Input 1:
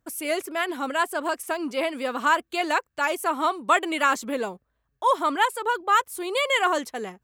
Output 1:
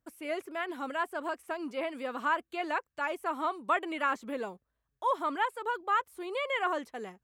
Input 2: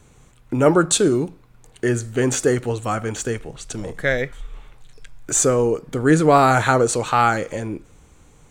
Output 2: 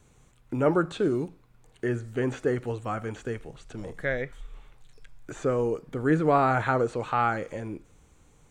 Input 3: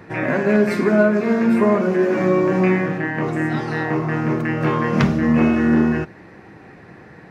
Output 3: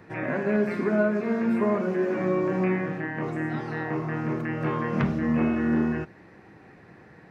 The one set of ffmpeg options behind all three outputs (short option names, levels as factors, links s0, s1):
-filter_complex "[0:a]acrossover=split=3000[s0][s1];[s1]acompressor=threshold=0.00398:ratio=4:attack=1:release=60[s2];[s0][s2]amix=inputs=2:normalize=0,volume=0.398"